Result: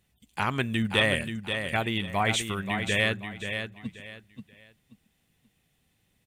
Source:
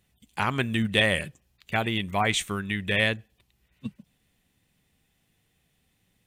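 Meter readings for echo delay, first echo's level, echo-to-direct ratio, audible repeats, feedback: 0.532 s, -7.5 dB, -7.0 dB, 3, 27%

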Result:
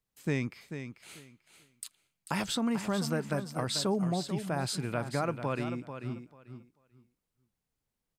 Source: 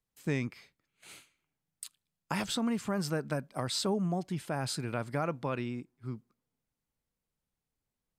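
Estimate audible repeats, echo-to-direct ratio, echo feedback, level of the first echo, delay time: 2, -9.5 dB, 19%, -9.5 dB, 0.441 s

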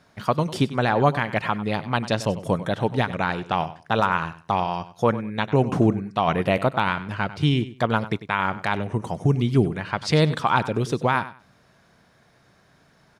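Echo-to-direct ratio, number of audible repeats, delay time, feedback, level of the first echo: -15.0 dB, 2, 97 ms, 21%, -15.0 dB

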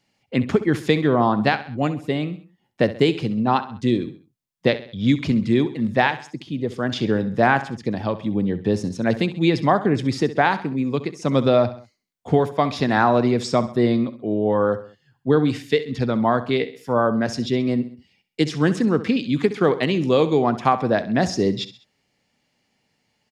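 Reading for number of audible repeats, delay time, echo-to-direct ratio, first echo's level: 3, 66 ms, -13.5 dB, -14.5 dB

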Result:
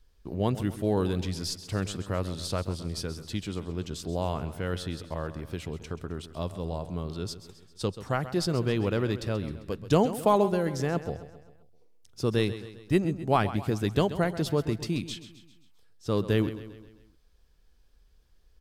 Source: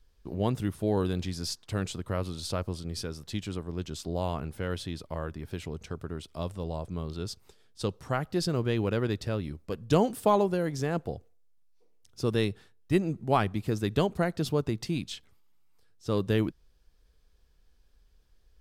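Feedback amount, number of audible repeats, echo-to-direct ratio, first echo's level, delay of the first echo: 51%, 4, -12.0 dB, -13.5 dB, 0.132 s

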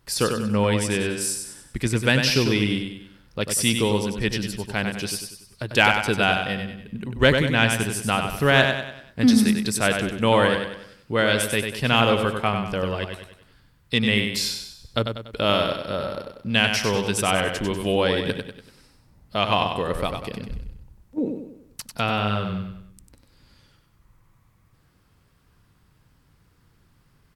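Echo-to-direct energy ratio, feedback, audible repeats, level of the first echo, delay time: -5.0 dB, 44%, 5, -6.0 dB, 96 ms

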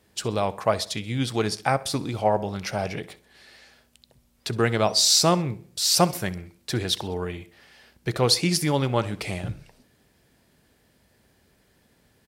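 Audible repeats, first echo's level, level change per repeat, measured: 3, -20.0 dB, -7.5 dB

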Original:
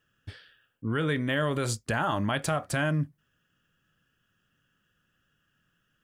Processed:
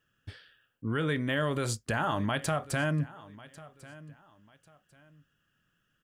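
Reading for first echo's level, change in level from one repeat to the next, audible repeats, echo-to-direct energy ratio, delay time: -19.5 dB, -11.0 dB, 2, -19.0 dB, 1.095 s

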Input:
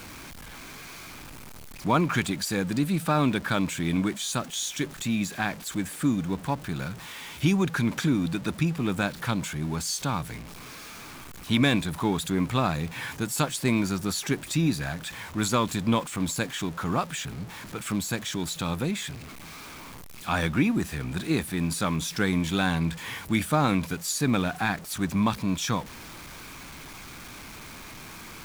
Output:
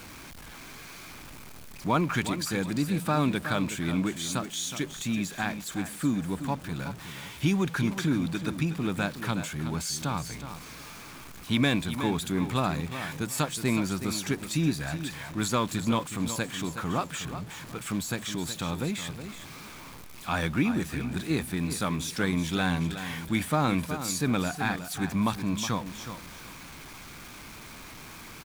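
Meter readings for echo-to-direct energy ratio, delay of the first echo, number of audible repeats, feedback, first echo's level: -10.0 dB, 0.368 s, 2, 24%, -10.5 dB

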